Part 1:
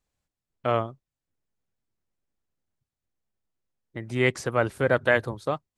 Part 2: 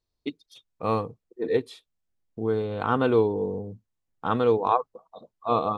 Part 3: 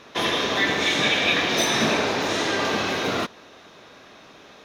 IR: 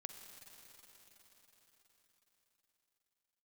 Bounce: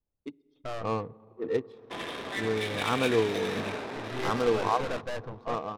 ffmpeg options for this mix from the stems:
-filter_complex "[0:a]aeval=exprs='(tanh(31.6*val(0)+0.65)-tanh(0.65))/31.6':channel_layout=same,volume=-2dB[link_01];[1:a]dynaudnorm=framelen=100:gausssize=13:maxgain=3.5dB,volume=-10.5dB,asplit=2[link_02][link_03];[link_03]volume=-5dB[link_04];[2:a]aemphasis=mode=production:type=cd,acrossover=split=4100[link_05][link_06];[link_06]acompressor=threshold=-37dB:ratio=4:attack=1:release=60[link_07];[link_05][link_07]amix=inputs=2:normalize=0,adelay=1750,volume=-14dB,asplit=2[link_08][link_09];[link_09]volume=-10dB[link_10];[3:a]atrim=start_sample=2205[link_11];[link_04][link_10]amix=inputs=2:normalize=0[link_12];[link_12][link_11]afir=irnorm=-1:irlink=0[link_13];[link_01][link_02][link_08][link_13]amix=inputs=4:normalize=0,highshelf=frequency=7100:width_type=q:width=3:gain=-8.5,adynamicsmooth=sensitivity=5:basefreq=930"

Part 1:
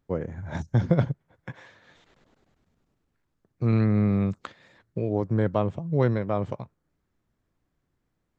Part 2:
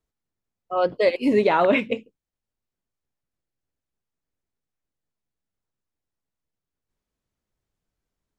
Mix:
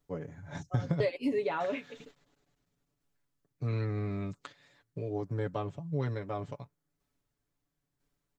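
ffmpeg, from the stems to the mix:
ffmpeg -i stem1.wav -i stem2.wav -filter_complex "[0:a]highshelf=frequency=3600:gain=10.5,volume=-4dB,asplit=3[link_01][link_02][link_03];[link_01]atrim=end=1.08,asetpts=PTS-STARTPTS,afade=type=out:start_time=1.076:duration=0.004:curve=hsin[link_04];[link_02]atrim=start=1.08:end=1.6,asetpts=PTS-STARTPTS,volume=0[link_05];[link_03]atrim=start=1.6,asetpts=PTS-STARTPTS,afade=type=in:duration=0.004:curve=hsin[link_06];[link_04][link_05][link_06]concat=n=3:v=0:a=1[link_07];[1:a]aeval=exprs='val(0)*pow(10,-28*if(lt(mod(1*n/s,1),2*abs(1)/1000),1-mod(1*n/s,1)/(2*abs(1)/1000),(mod(1*n/s,1)-2*abs(1)/1000)/(1-2*abs(1)/1000))/20)':channel_layout=same,volume=2dB,asplit=2[link_08][link_09];[link_09]apad=whole_len=369890[link_10];[link_07][link_10]sidechaingate=range=-7dB:threshold=-54dB:ratio=16:detection=peak[link_11];[link_11][link_08]amix=inputs=2:normalize=0,aecho=1:1:7:0.72,acompressor=threshold=-26dB:ratio=12" out.wav

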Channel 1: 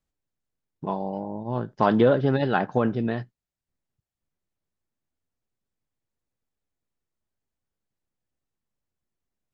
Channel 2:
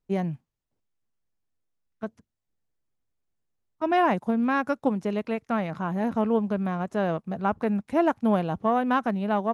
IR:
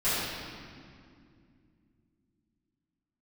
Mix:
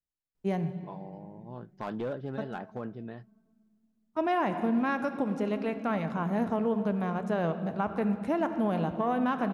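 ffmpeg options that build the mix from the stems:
-filter_complex "[0:a]asoftclip=type=hard:threshold=-13.5dB,adynamicequalizer=threshold=0.0126:dfrequency=1800:dqfactor=0.7:tfrequency=1800:tqfactor=0.7:attack=5:release=100:ratio=0.375:range=2:mode=cutabove:tftype=highshelf,volume=-15dB[link_01];[1:a]adelay=350,volume=-3dB,asplit=2[link_02][link_03];[link_03]volume=-21.5dB[link_04];[2:a]atrim=start_sample=2205[link_05];[link_04][link_05]afir=irnorm=-1:irlink=0[link_06];[link_01][link_02][link_06]amix=inputs=3:normalize=0,alimiter=limit=-19.5dB:level=0:latency=1:release=87"

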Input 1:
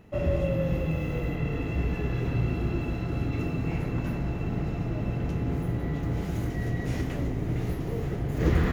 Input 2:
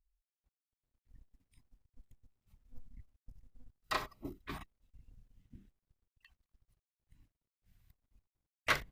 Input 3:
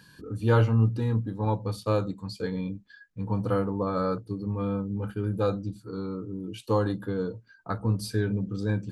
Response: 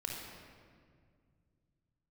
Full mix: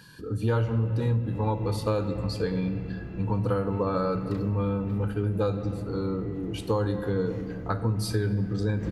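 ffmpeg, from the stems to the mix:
-filter_complex "[0:a]highshelf=frequency=4100:gain=-9.5,adelay=400,volume=-11dB[link_01];[1:a]alimiter=limit=-23.5dB:level=0:latency=1:release=235,adelay=400,volume=-12dB[link_02];[2:a]volume=2dB,asplit=2[link_03][link_04];[link_04]volume=-8.5dB[link_05];[3:a]atrim=start_sample=2205[link_06];[link_05][link_06]afir=irnorm=-1:irlink=0[link_07];[link_01][link_02][link_03][link_07]amix=inputs=4:normalize=0,acompressor=threshold=-22dB:ratio=6"

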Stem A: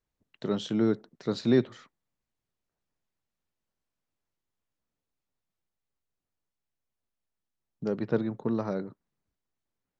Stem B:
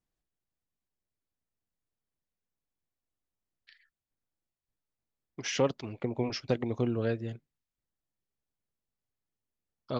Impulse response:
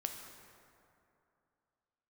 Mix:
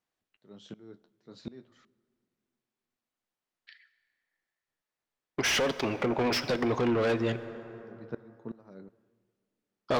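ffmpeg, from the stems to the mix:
-filter_complex "[0:a]flanger=delay=9:depth=3.6:regen=-49:speed=0.36:shape=sinusoidal,aeval=exprs='val(0)*pow(10,-25*if(lt(mod(-2.7*n/s,1),2*abs(-2.7)/1000),1-mod(-2.7*n/s,1)/(2*abs(-2.7)/1000),(mod(-2.7*n/s,1)-2*abs(-2.7)/1000)/(1-2*abs(-2.7)/1000))/20)':channel_layout=same,volume=-5.5dB,asplit=2[link_01][link_02];[link_02]volume=-18dB[link_03];[1:a]agate=range=-18dB:threshold=-51dB:ratio=16:detection=peak,asplit=2[link_04][link_05];[link_05]highpass=frequency=720:poles=1,volume=30dB,asoftclip=type=tanh:threshold=-13.5dB[link_06];[link_04][link_06]amix=inputs=2:normalize=0,lowpass=frequency=3000:poles=1,volume=-6dB,volume=-2dB,asplit=2[link_07][link_08];[link_08]volume=-4.5dB[link_09];[2:a]atrim=start_sample=2205[link_10];[link_03][link_09]amix=inputs=2:normalize=0[link_11];[link_11][link_10]afir=irnorm=-1:irlink=0[link_12];[link_01][link_07][link_12]amix=inputs=3:normalize=0,alimiter=limit=-20.5dB:level=0:latency=1:release=453"

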